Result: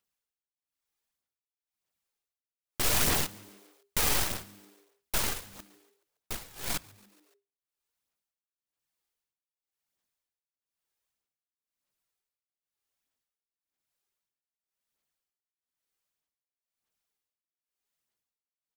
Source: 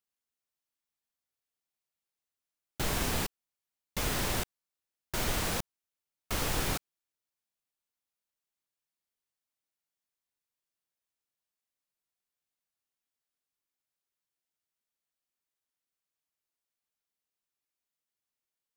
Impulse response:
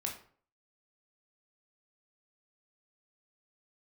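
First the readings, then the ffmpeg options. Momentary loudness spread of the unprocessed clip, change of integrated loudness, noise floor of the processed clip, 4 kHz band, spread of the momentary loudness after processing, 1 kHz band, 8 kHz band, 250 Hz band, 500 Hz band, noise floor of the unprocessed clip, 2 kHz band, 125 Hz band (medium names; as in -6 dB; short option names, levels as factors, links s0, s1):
9 LU, +3.5 dB, under -85 dBFS, +2.5 dB, 15 LU, -0.5 dB, +4.5 dB, -3.0 dB, -1.5 dB, under -85 dBFS, +1.0 dB, -3.0 dB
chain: -filter_complex "[0:a]aeval=exprs='(mod(20*val(0)+1,2)-1)/20':c=same,aphaser=in_gain=1:out_gain=1:delay=2.5:decay=0.38:speed=1.6:type=sinusoidal,tremolo=f=1:d=0.96,aeval=exprs='0.075*(cos(1*acos(clip(val(0)/0.075,-1,1)))-cos(1*PI/2))+0.0168*(cos(8*acos(clip(val(0)/0.075,-1,1)))-cos(8*PI/2))':c=same,asplit=5[s0][s1][s2][s3][s4];[s1]adelay=141,afreqshift=100,volume=0.0631[s5];[s2]adelay=282,afreqshift=200,volume=0.038[s6];[s3]adelay=423,afreqshift=300,volume=0.0226[s7];[s4]adelay=564,afreqshift=400,volume=0.0136[s8];[s0][s5][s6][s7][s8]amix=inputs=5:normalize=0,asplit=2[s9][s10];[1:a]atrim=start_sample=2205[s11];[s10][s11]afir=irnorm=-1:irlink=0,volume=0.112[s12];[s9][s12]amix=inputs=2:normalize=0,volume=1.5"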